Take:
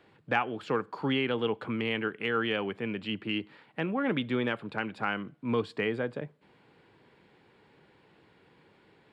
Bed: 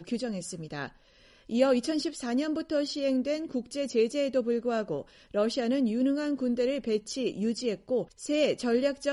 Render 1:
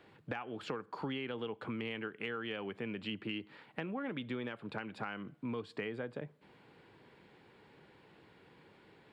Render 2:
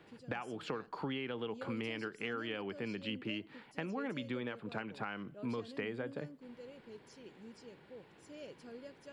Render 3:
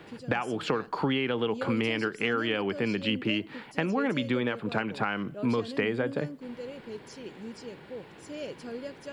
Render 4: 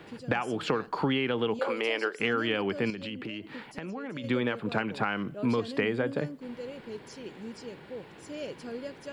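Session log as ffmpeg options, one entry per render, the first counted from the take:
-af "alimiter=limit=0.112:level=0:latency=1:release=323,acompressor=threshold=0.0141:ratio=5"
-filter_complex "[1:a]volume=0.0631[s0];[0:a][s0]amix=inputs=2:normalize=0"
-af "volume=3.76"
-filter_complex "[0:a]asettb=1/sr,asplit=3[s0][s1][s2];[s0]atrim=end=1.594[s3];[s1]atrim=start=1.59:end=2.2,asetpts=PTS-STARTPTS,afade=t=in:d=0.004:c=qsin,afade=t=out:st=0.606:d=0.004:c=qsin,highpass=f=520:t=q:w=1.6[s4];[s2]atrim=start=2.196[s5];[s3][s4]acrossfade=d=0.004:c1=hsin:c2=qsin[s6];[s6][s5]acrossfade=d=0.004:c1=qsin:c2=hsin,asettb=1/sr,asplit=3[s7][s8][s9];[s7]atrim=end=2.904[s10];[s8]atrim=start=2.9:end=4.24,asetpts=PTS-STARTPTS,afade=t=in:d=0.004:c=qsin,afade=t=out:st=1.336:d=0.004:c=qsin,acompressor=threshold=0.02:ratio=6:attack=3.2:release=140:knee=1:detection=peak[s11];[s9]atrim=start=4.236[s12];[s10][s11]acrossfade=d=0.004:c1=hsin:c2=qsin[s13];[s13][s12]acrossfade=d=0.004:c1=qsin:c2=hsin"

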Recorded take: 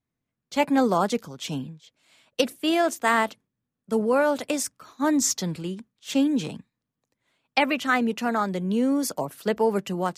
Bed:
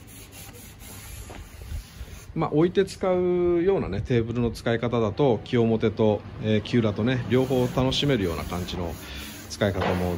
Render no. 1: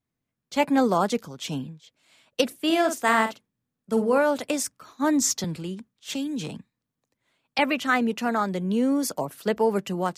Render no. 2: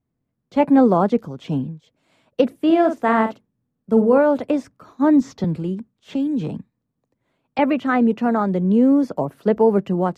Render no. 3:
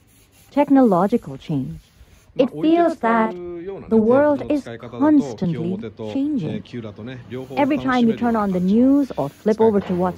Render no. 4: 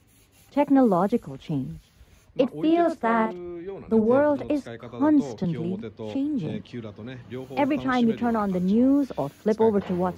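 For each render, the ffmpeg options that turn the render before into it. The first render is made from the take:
-filter_complex "[0:a]asettb=1/sr,asplit=3[s0][s1][s2];[s0]atrim=end=2.654[s3];[s1]atrim=start=2.65:end=4.18,asetpts=PTS-STARTPTS,afade=t=in:d=0.004:c=qsin,afade=t=out:st=1.526:d=0.004:c=qsin,asplit=2[s4][s5];[s5]adelay=49,volume=0.376[s6];[s4][s6]amix=inputs=2:normalize=0,atrim=end_sample=67473[s7];[s2]atrim=start=4.176[s8];[s3][s7]acrossfade=d=0.004:c1=hsin:c2=qsin[s9];[s9][s8]acrossfade=d=0.004:c1=qsin:c2=hsin,asettb=1/sr,asplit=3[s10][s11][s12];[s10]atrim=end=5.444[s13];[s11]atrim=start=5.44:end=7.59,asetpts=PTS-STARTPTS,afade=t=in:d=0.004:c=qsin,afade=t=out:st=2.146:d=0.004:c=qsin,acrossover=split=170|3000[s14][s15][s16];[s15]acompressor=threshold=0.0316:ratio=6:attack=3.2:release=140:knee=2.83:detection=peak[s17];[s14][s17][s16]amix=inputs=3:normalize=0[s18];[s12]atrim=start=7.586[s19];[s13][s18]acrossfade=d=0.004:c1=hsin:c2=qsin[s20];[s20][s19]acrossfade=d=0.004:c1=qsin:c2=hsin"
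-filter_complex "[0:a]acrossover=split=4300[s0][s1];[s1]acompressor=threshold=0.00355:ratio=4:attack=1:release=60[s2];[s0][s2]amix=inputs=2:normalize=0,tiltshelf=f=1400:g=9"
-filter_complex "[1:a]volume=0.355[s0];[0:a][s0]amix=inputs=2:normalize=0"
-af "volume=0.562"

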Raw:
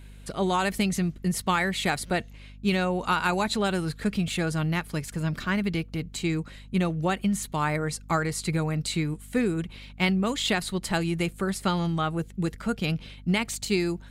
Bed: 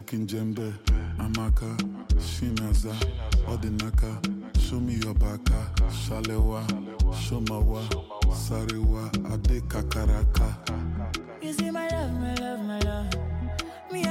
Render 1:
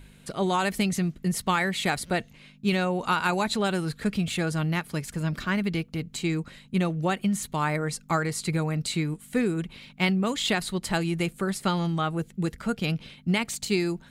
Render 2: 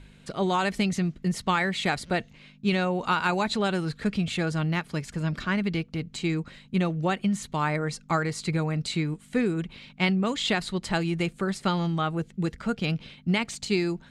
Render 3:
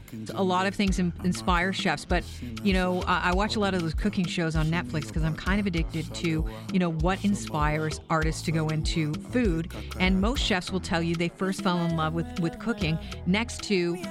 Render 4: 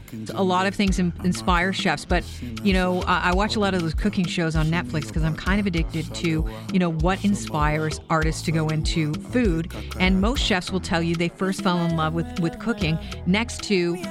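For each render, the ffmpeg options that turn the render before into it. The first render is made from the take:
-af "bandreject=f=50:t=h:w=4,bandreject=f=100:t=h:w=4"
-af "lowpass=6600"
-filter_complex "[1:a]volume=0.376[s0];[0:a][s0]amix=inputs=2:normalize=0"
-af "volume=1.58"

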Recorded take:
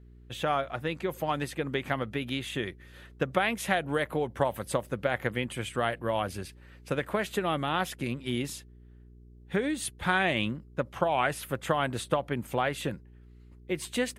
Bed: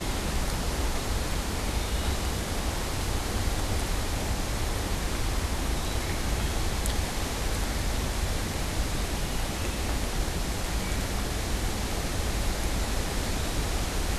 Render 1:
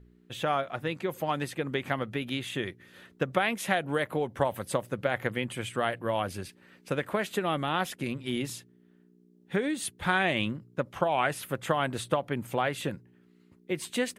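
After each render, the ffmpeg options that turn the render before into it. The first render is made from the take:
-af "bandreject=f=60:t=h:w=4,bandreject=f=120:t=h:w=4"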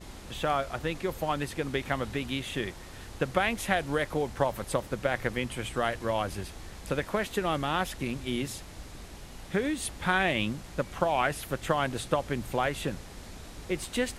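-filter_complex "[1:a]volume=0.168[s0];[0:a][s0]amix=inputs=2:normalize=0"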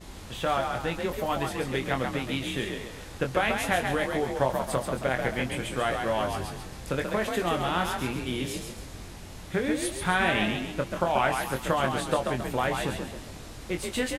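-filter_complex "[0:a]asplit=2[s0][s1];[s1]adelay=23,volume=0.473[s2];[s0][s2]amix=inputs=2:normalize=0,asplit=2[s3][s4];[s4]asplit=5[s5][s6][s7][s8][s9];[s5]adelay=135,afreqshift=45,volume=0.562[s10];[s6]adelay=270,afreqshift=90,volume=0.232[s11];[s7]adelay=405,afreqshift=135,volume=0.0944[s12];[s8]adelay=540,afreqshift=180,volume=0.0389[s13];[s9]adelay=675,afreqshift=225,volume=0.0158[s14];[s10][s11][s12][s13][s14]amix=inputs=5:normalize=0[s15];[s3][s15]amix=inputs=2:normalize=0"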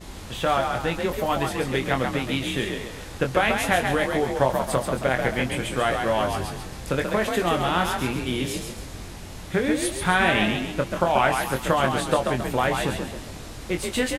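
-af "volume=1.68"

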